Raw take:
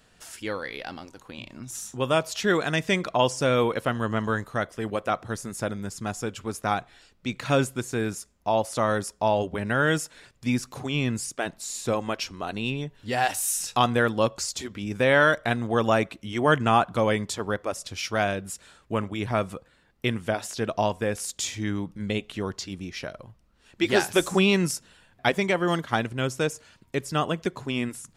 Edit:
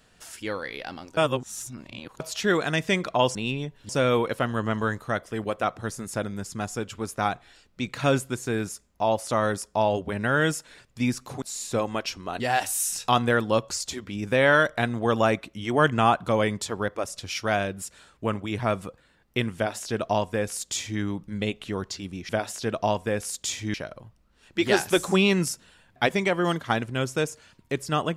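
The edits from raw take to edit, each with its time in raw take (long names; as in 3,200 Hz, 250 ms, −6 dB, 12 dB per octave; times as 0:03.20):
0:01.17–0:02.20: reverse
0:10.88–0:11.56: remove
0:12.54–0:13.08: move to 0:03.35
0:20.24–0:21.69: duplicate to 0:22.97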